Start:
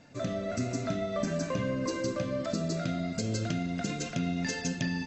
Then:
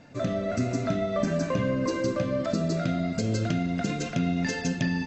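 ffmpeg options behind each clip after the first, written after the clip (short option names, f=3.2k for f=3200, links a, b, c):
-af "highshelf=f=4.4k:g=-8,volume=5dB"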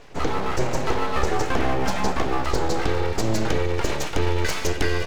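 -af "aeval=exprs='abs(val(0))':c=same,volume=7dB"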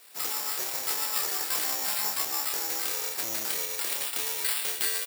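-filter_complex "[0:a]acrusher=samples=7:mix=1:aa=0.000001,aderivative,asplit=2[a][b];[b]adelay=27,volume=-5dB[c];[a][c]amix=inputs=2:normalize=0,volume=4.5dB"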